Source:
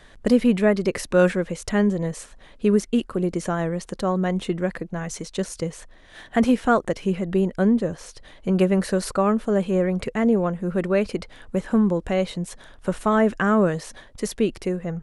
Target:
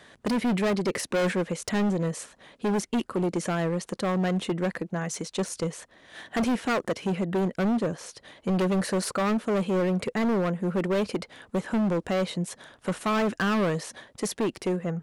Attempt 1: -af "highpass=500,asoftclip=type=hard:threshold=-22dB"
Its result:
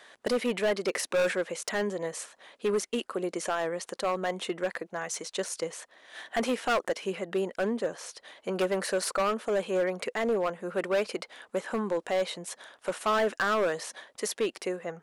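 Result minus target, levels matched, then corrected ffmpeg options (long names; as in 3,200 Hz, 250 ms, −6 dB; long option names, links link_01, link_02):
125 Hz band −11.5 dB
-af "highpass=130,asoftclip=type=hard:threshold=-22dB"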